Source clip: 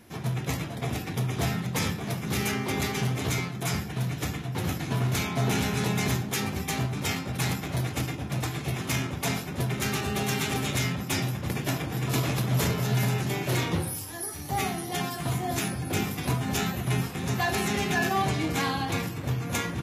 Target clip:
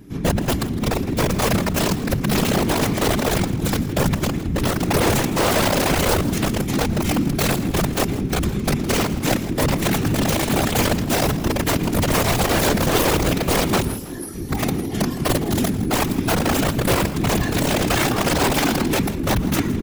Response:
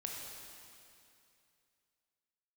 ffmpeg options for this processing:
-filter_complex "[0:a]lowshelf=f=390:t=q:w=3:g=10,asplit=2[a][b];[b]acontrast=60,volume=-0.5dB[c];[a][c]amix=inputs=2:normalize=0,aeval=exprs='(mod(1.41*val(0)+1,2)-1)/1.41':c=same,asplit=2[d][e];[e]adelay=116.6,volume=-19dB,highshelf=f=4k:g=-2.62[f];[d][f]amix=inputs=2:normalize=0,afftfilt=real='hypot(re,im)*cos(2*PI*random(0))':imag='hypot(re,im)*sin(2*PI*random(1))':win_size=512:overlap=0.75,asplit=2[g][h];[h]asplit=4[i][j][k][l];[i]adelay=161,afreqshift=78,volume=-16dB[m];[j]adelay=322,afreqshift=156,volume=-23.7dB[n];[k]adelay=483,afreqshift=234,volume=-31.5dB[o];[l]adelay=644,afreqshift=312,volume=-39.2dB[p];[m][n][o][p]amix=inputs=4:normalize=0[q];[g][q]amix=inputs=2:normalize=0,volume=-4.5dB"

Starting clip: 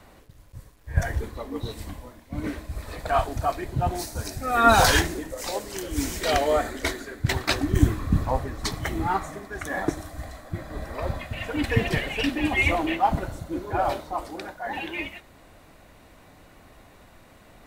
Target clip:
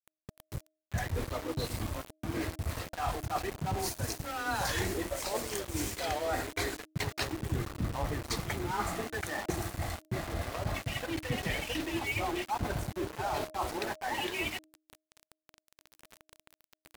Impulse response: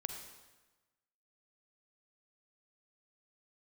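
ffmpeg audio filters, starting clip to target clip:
-af "afreqshift=18,areverse,acompressor=threshold=-35dB:ratio=8,areverse,aeval=exprs='val(0)*gte(abs(val(0)),0.00841)':c=same,bandreject=f=299.8:t=h:w=4,bandreject=f=599.6:t=h:w=4,asetrate=45938,aresample=44100,volume=4.5dB"

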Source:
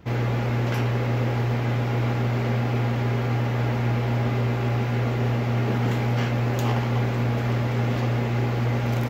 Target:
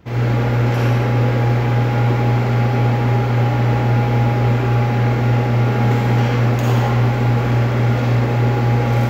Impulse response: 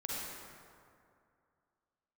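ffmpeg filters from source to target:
-filter_complex "[1:a]atrim=start_sample=2205,afade=t=out:st=0.34:d=0.01,atrim=end_sample=15435[a];[0:a][a]afir=irnorm=-1:irlink=0,volume=4.5dB"

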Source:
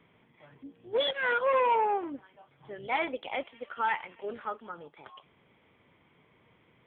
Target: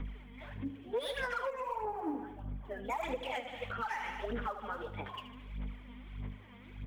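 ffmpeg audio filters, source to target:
-filter_complex "[0:a]aeval=exprs='val(0)+0.00447*(sin(2*PI*50*n/s)+sin(2*PI*2*50*n/s)/2+sin(2*PI*3*50*n/s)/3+sin(2*PI*4*50*n/s)/4+sin(2*PI*5*50*n/s)/5)':c=same,aphaser=in_gain=1:out_gain=1:delay=4.3:decay=0.74:speed=1.6:type=sinusoidal,tiltshelf=f=640:g=-3.5,acrossover=split=380|1400[a][b][c];[c]asoftclip=type=tanh:threshold=-30.5dB[d];[a][b][d]amix=inputs=3:normalize=0,aecho=1:1:76|152|228|304|380|456:0.251|0.138|0.076|0.0418|0.023|0.0126,acompressor=threshold=-32dB:ratio=3,asettb=1/sr,asplit=3[e][f][g];[e]atrim=end=1.504[h];[f]atrim=start=1.5:end=3.03,asetpts=PTS-STARTPTS,afade=t=in:d=0.004:c=qsin,afade=t=out:st=1.526:d=0.004:c=qsin,equalizer=f=3.5k:w=0.49:g=-11.5[i];[g]atrim=start=3.026[j];[h][i]acrossfade=d=0.004:c1=hsin:c2=qsin[k];[k][j]acrossfade=d=0.004:c1=qsin:c2=hsin,alimiter=level_in=5dB:limit=-24dB:level=0:latency=1:release=223,volume=-5dB,flanger=delay=4.1:depth=5.9:regen=-47:speed=0.69:shape=sinusoidal,volume=5.5dB"

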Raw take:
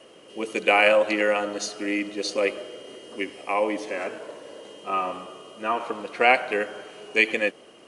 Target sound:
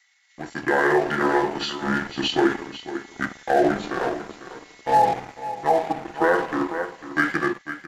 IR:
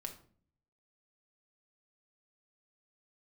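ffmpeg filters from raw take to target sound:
-filter_complex "[0:a]equalizer=f=1.1k:w=1.8:g=11.5[a];[1:a]atrim=start_sample=2205,asetrate=48510,aresample=44100[b];[a][b]afir=irnorm=-1:irlink=0,acrossover=split=2600[c][d];[c]aeval=exprs='sgn(val(0))*max(abs(val(0))-0.015,0)':c=same[e];[e][d]amix=inputs=2:normalize=0,asetrate=30296,aresample=44100,atempo=1.45565,aecho=1:1:498:0.211,asplit=2[f][g];[g]asoftclip=type=tanh:threshold=-19dB,volume=-3dB[h];[f][h]amix=inputs=2:normalize=0,dynaudnorm=f=240:g=7:m=11.5dB,alimiter=level_in=4.5dB:limit=-1dB:release=50:level=0:latency=1,volume=-7.5dB"

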